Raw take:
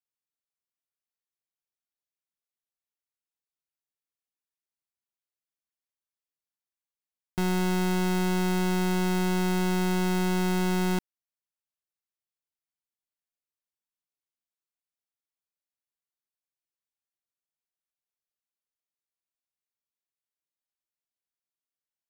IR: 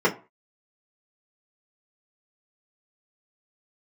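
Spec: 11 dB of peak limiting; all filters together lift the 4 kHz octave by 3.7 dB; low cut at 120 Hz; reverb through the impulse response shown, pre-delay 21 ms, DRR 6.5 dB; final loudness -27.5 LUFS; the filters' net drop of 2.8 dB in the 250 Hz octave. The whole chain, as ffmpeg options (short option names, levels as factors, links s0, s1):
-filter_complex "[0:a]highpass=120,equalizer=f=250:t=o:g=-4,equalizer=f=4000:t=o:g=4.5,alimiter=level_in=1.58:limit=0.0631:level=0:latency=1,volume=0.631,asplit=2[s0][s1];[1:a]atrim=start_sample=2205,adelay=21[s2];[s1][s2]afir=irnorm=-1:irlink=0,volume=0.0668[s3];[s0][s3]amix=inputs=2:normalize=0,volume=3.16"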